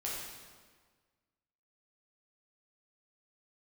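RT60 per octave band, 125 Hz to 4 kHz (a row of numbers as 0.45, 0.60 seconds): 1.7, 1.7, 1.6, 1.6, 1.4, 1.3 seconds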